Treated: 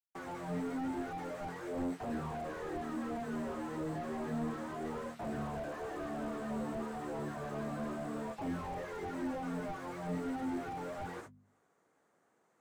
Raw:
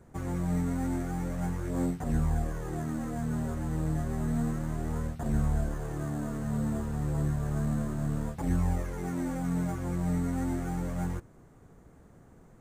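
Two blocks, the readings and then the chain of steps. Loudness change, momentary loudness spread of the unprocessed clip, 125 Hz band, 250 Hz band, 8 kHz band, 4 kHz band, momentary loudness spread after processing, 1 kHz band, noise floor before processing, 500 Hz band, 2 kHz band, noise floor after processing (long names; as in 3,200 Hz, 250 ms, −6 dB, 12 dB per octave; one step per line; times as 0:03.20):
−7.5 dB, 5 LU, −16.0 dB, −7.0 dB, −10.0 dB, can't be measured, 4 LU, 0.0 dB, −56 dBFS, −0.5 dB, −1.0 dB, −74 dBFS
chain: meter weighting curve A
noise reduction from a noise print of the clip's start 7 dB
noise gate −57 dBFS, range −55 dB
low-shelf EQ 170 Hz −9.5 dB
mains-hum notches 50/100/150/200/250 Hz
reversed playback
upward compression, threshold −48 dBFS
reversed playback
flanger 0.97 Hz, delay 8.2 ms, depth 8.1 ms, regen −47%
slew-rate limiting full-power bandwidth 2 Hz
level +12 dB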